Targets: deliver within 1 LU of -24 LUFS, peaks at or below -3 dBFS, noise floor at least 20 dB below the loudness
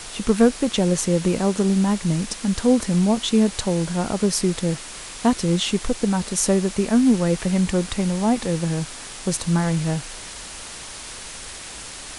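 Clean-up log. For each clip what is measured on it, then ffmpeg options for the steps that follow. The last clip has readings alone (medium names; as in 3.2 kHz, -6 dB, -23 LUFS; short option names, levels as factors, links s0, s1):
noise floor -37 dBFS; noise floor target -41 dBFS; loudness -21.0 LUFS; peak level -4.0 dBFS; loudness target -24.0 LUFS
-> -af "afftdn=nr=6:nf=-37"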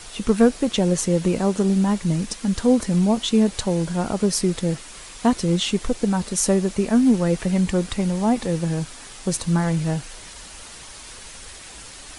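noise floor -41 dBFS; noise floor target -42 dBFS
-> -af "afftdn=nr=6:nf=-41"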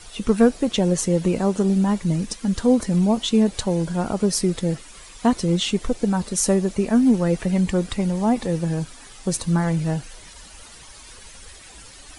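noise floor -44 dBFS; loudness -21.5 LUFS; peak level -4.0 dBFS; loudness target -24.0 LUFS
-> -af "volume=0.75"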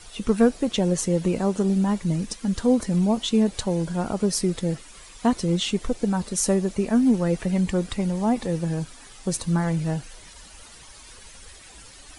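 loudness -24.0 LUFS; peak level -6.5 dBFS; noise floor -47 dBFS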